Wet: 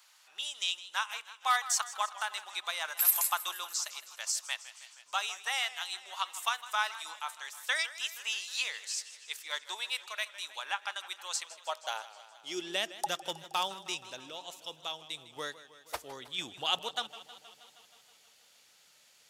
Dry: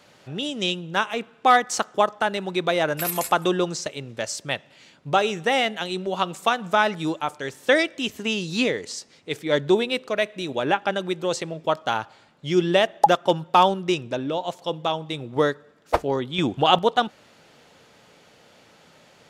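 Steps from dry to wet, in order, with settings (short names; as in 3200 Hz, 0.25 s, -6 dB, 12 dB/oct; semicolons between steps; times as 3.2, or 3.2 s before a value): pre-emphasis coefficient 0.97; high-pass sweep 980 Hz -> 69 Hz, 11.45–13.81; warbling echo 0.158 s, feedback 69%, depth 103 cents, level -16 dB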